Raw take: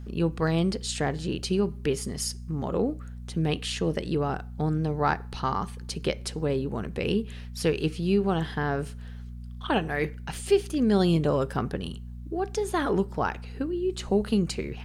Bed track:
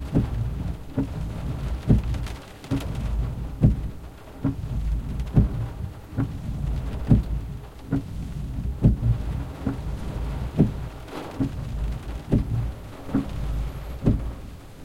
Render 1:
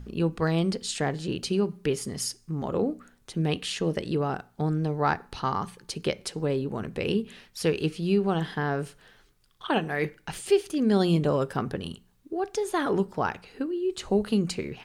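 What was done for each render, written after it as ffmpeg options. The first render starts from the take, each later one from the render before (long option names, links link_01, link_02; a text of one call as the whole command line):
ffmpeg -i in.wav -af "bandreject=frequency=60:width_type=h:width=4,bandreject=frequency=120:width_type=h:width=4,bandreject=frequency=180:width_type=h:width=4,bandreject=frequency=240:width_type=h:width=4" out.wav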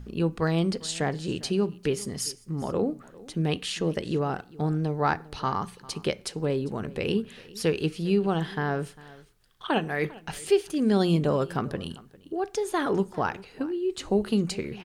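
ffmpeg -i in.wav -af "aecho=1:1:400:0.0891" out.wav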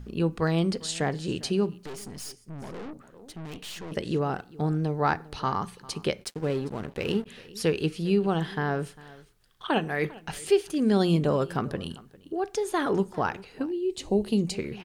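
ffmpeg -i in.wav -filter_complex "[0:a]asettb=1/sr,asplit=3[link_01][link_02][link_03];[link_01]atrim=end=1.834[link_04];[link_02]atrim=start=1.83:end=3.92,asetpts=PTS-STARTPTS,afade=type=in:duration=0.004:curve=qsin,afade=type=out:start_time=2.086:duration=0.004:curve=qsin,aeval=exprs='(tanh(70.8*val(0)+0.65)-tanh(0.65))/70.8':channel_layout=same[link_05];[link_03]atrim=start=3.916[link_06];[link_04][link_05]acrossfade=duration=0.004:curve1=hsin:curve2=qsin[link_07];[link_07][link_06]acrossfade=duration=0.004:curve1=qsin:curve2=hsin,asplit=3[link_08][link_09][link_10];[link_08]afade=type=out:start_time=6.23:duration=0.02[link_11];[link_09]aeval=exprs='sgn(val(0))*max(abs(val(0))-0.00841,0)':channel_layout=same,afade=type=in:start_time=6.23:duration=0.02,afade=type=out:start_time=7.25:duration=0.02[link_12];[link_10]afade=type=in:start_time=7.25:duration=0.02[link_13];[link_11][link_12][link_13]amix=inputs=3:normalize=0,asettb=1/sr,asplit=3[link_14][link_15][link_16];[link_14]atrim=end=13.654[link_17];[link_15]atrim=start=13.65:end=14.54,asetpts=PTS-STARTPTS,afade=type=in:duration=0.004:curve=qsin,afade=type=out:start_time=0.886:duration=0.004:curve=qsin,equalizer=frequency=1400:width_type=o:width=0.68:gain=-15[link_18];[link_16]atrim=start=14.536[link_19];[link_17][link_18]acrossfade=duration=0.004:curve1=hsin:curve2=qsin[link_20];[link_20][link_19]acrossfade=duration=0.004:curve1=qsin:curve2=hsin" out.wav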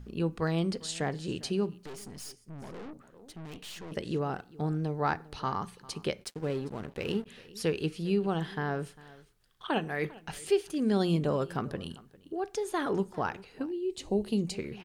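ffmpeg -i in.wav -af "volume=-4.5dB" out.wav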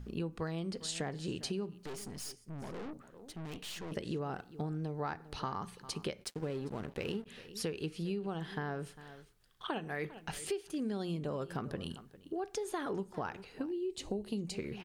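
ffmpeg -i in.wav -af "acompressor=threshold=-34dB:ratio=6" out.wav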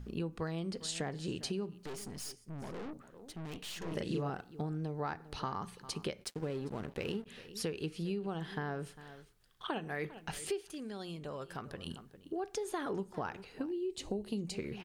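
ffmpeg -i in.wav -filter_complex "[0:a]asettb=1/sr,asplit=3[link_01][link_02][link_03];[link_01]atrim=end=3.784[link_04];[link_02]atrim=start=3.78:end=4.3,asetpts=PTS-STARTPTS,afade=type=in:duration=0.004:curve=qsin,afade=type=out:start_time=0.516:duration=0.004:curve=qsin,asplit=2[link_05][link_06];[link_06]adelay=36,volume=-2dB[link_07];[link_05][link_07]amix=inputs=2:normalize=0,atrim=end_sample=22932[link_08];[link_03]atrim=start=4.296[link_09];[link_04][link_08]acrossfade=duration=0.004:curve1=hsin:curve2=qsin[link_10];[link_10][link_09]acrossfade=duration=0.004:curve1=qsin:curve2=hsin,asettb=1/sr,asplit=3[link_11][link_12][link_13];[link_11]atrim=end=10.654[link_14];[link_12]atrim=start=10.65:end=11.87,asetpts=PTS-STARTPTS,afade=type=in:duration=0.004:curve=qsin,afade=type=out:start_time=1.216:duration=0.004:curve=qsin,equalizer=frequency=220:width=0.44:gain=-8[link_15];[link_13]atrim=start=11.866[link_16];[link_14][link_15]acrossfade=duration=0.004:curve1=hsin:curve2=qsin[link_17];[link_17][link_16]acrossfade=duration=0.004:curve1=qsin:curve2=hsin" out.wav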